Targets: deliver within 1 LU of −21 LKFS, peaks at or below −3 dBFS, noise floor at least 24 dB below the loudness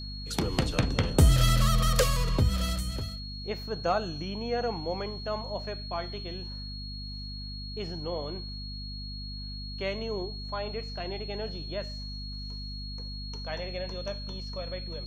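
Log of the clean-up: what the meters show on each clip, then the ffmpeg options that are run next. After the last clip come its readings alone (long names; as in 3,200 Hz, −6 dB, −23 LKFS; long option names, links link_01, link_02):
mains hum 50 Hz; hum harmonics up to 250 Hz; level of the hum −37 dBFS; interfering tone 4,300 Hz; level of the tone −41 dBFS; integrated loudness −31.5 LKFS; sample peak −11.0 dBFS; target loudness −21.0 LKFS
→ -af "bandreject=frequency=50:width_type=h:width=6,bandreject=frequency=100:width_type=h:width=6,bandreject=frequency=150:width_type=h:width=6,bandreject=frequency=200:width_type=h:width=6,bandreject=frequency=250:width_type=h:width=6"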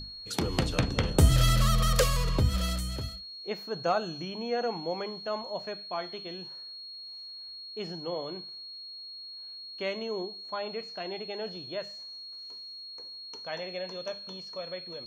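mains hum none found; interfering tone 4,300 Hz; level of the tone −41 dBFS
→ -af "bandreject=frequency=4300:width=30"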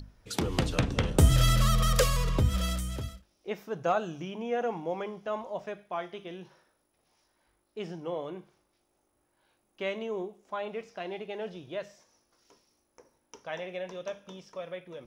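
interfering tone none found; integrated loudness −31.0 LKFS; sample peak −10.0 dBFS; target loudness −21.0 LKFS
→ -af "volume=10dB,alimiter=limit=-3dB:level=0:latency=1"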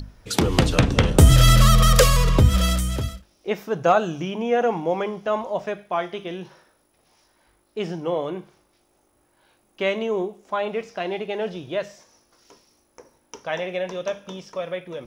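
integrated loudness −21.5 LKFS; sample peak −3.0 dBFS; background noise floor −65 dBFS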